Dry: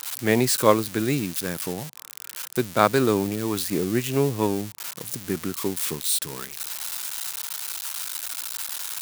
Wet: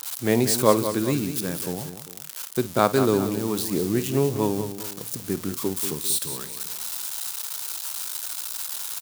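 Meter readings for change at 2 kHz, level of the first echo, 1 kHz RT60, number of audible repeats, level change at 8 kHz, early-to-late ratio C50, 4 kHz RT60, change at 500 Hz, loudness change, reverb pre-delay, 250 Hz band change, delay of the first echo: −4.0 dB, −16.0 dB, no reverb audible, 3, +0.5 dB, no reverb audible, no reverb audible, +0.5 dB, 0.0 dB, no reverb audible, +0.5 dB, 52 ms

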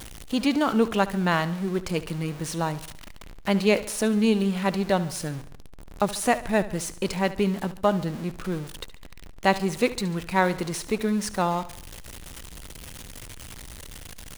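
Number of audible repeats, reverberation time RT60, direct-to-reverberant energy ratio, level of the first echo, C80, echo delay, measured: 4, no reverb audible, no reverb audible, −16.0 dB, no reverb audible, 71 ms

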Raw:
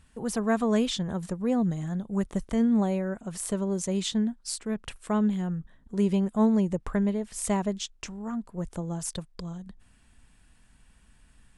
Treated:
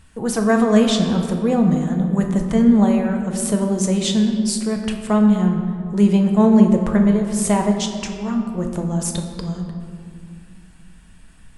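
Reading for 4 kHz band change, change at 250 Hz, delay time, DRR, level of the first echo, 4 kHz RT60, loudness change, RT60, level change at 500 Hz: +9.0 dB, +11.0 dB, no echo audible, 2.5 dB, no echo audible, 1.3 s, +10.5 dB, 2.4 s, +9.5 dB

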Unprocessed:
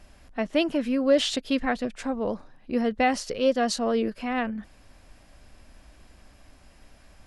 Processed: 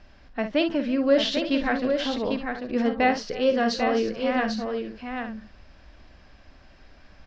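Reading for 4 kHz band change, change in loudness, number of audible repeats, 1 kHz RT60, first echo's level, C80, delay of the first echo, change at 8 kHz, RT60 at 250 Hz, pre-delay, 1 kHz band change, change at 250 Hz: +1.5 dB, +1.0 dB, 4, no reverb audible, −9.0 dB, no reverb audible, 51 ms, −6.5 dB, no reverb audible, no reverb audible, +2.0 dB, +1.5 dB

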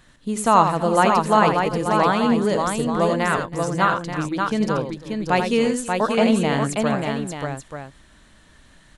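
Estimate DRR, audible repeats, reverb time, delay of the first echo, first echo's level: no reverb audible, 4, no reverb audible, 84 ms, −7.5 dB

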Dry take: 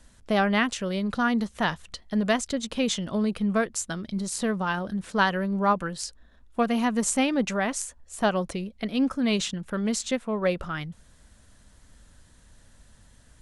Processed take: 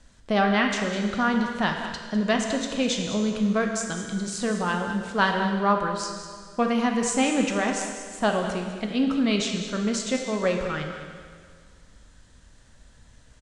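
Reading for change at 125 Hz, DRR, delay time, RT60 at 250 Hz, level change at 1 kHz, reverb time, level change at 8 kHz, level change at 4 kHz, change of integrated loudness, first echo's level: +1.0 dB, 2.5 dB, 202 ms, 1.9 s, +2.0 dB, 1.9 s, 0.0 dB, +2.0 dB, +1.5 dB, −12.0 dB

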